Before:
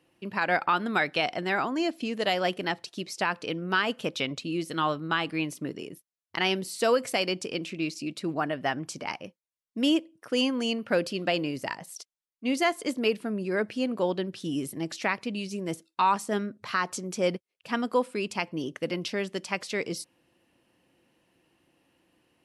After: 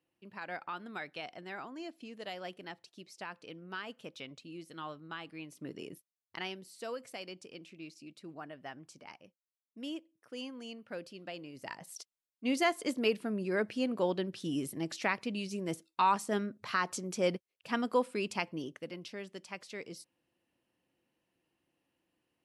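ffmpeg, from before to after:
ffmpeg -i in.wav -af "volume=8.5dB,afade=type=in:start_time=5.5:duration=0.4:silence=0.266073,afade=type=out:start_time=5.9:duration=0.65:silence=0.237137,afade=type=in:start_time=11.52:duration=0.47:silence=0.223872,afade=type=out:start_time=18.37:duration=0.51:silence=0.354813" out.wav

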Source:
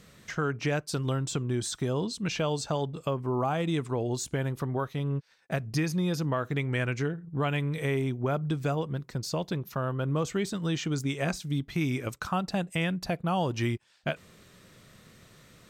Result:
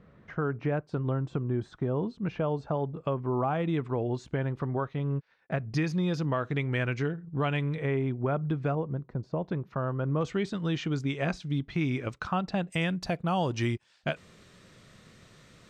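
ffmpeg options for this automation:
ffmpeg -i in.wav -af "asetnsamples=nb_out_samples=441:pad=0,asendcmd='3.05 lowpass f 2300;5.74 lowpass f 4300;7.75 lowpass f 2100;8.75 lowpass f 1000;9.44 lowpass f 1700;10.21 lowpass f 3700;12.72 lowpass f 7800',lowpass=1300" out.wav

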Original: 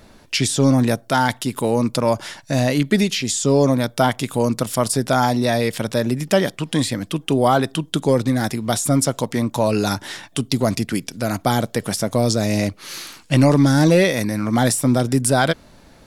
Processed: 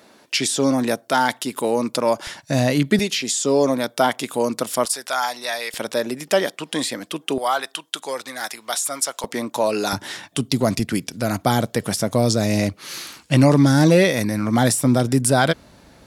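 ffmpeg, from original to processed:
ffmpeg -i in.wav -af "asetnsamples=nb_out_samples=441:pad=0,asendcmd='2.27 highpass f 83;2.99 highpass f 280;4.85 highpass f 990;5.74 highpass f 350;7.38 highpass f 900;9.24 highpass f 330;9.93 highpass f 99;10.79 highpass f 46',highpass=270" out.wav

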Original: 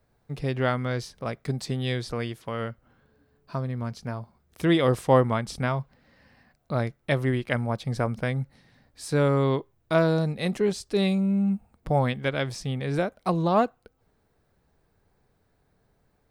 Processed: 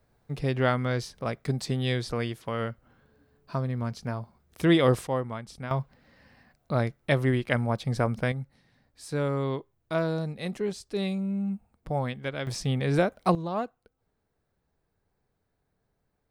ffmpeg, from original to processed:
ffmpeg -i in.wav -af "asetnsamples=nb_out_samples=441:pad=0,asendcmd='5.07 volume volume -10dB;5.71 volume volume 0.5dB;8.32 volume volume -6dB;12.47 volume volume 2.5dB;13.35 volume volume -9dB',volume=0.5dB" out.wav

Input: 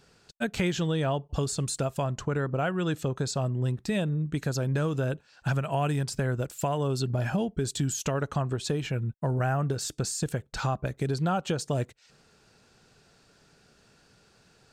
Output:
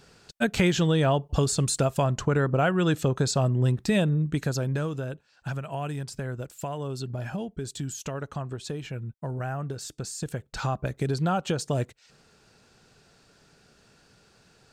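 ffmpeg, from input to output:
ffmpeg -i in.wav -af "volume=11.5dB,afade=type=out:start_time=4.01:duration=1.06:silence=0.316228,afade=type=in:start_time=10.05:duration=0.87:silence=0.473151" out.wav

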